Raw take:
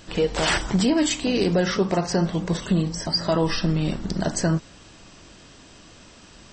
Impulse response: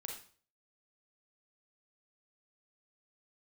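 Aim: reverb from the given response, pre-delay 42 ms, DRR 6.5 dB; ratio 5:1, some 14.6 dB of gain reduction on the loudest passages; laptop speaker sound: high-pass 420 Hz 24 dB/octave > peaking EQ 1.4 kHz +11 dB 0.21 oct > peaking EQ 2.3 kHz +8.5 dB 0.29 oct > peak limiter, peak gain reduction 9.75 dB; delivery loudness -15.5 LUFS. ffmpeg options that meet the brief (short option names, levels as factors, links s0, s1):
-filter_complex "[0:a]acompressor=threshold=0.02:ratio=5,asplit=2[s0][s1];[1:a]atrim=start_sample=2205,adelay=42[s2];[s1][s2]afir=irnorm=-1:irlink=0,volume=0.631[s3];[s0][s3]amix=inputs=2:normalize=0,highpass=f=420:w=0.5412,highpass=f=420:w=1.3066,equalizer=f=1400:t=o:w=0.21:g=11,equalizer=f=2300:t=o:w=0.29:g=8.5,volume=16.8,alimiter=limit=0.631:level=0:latency=1"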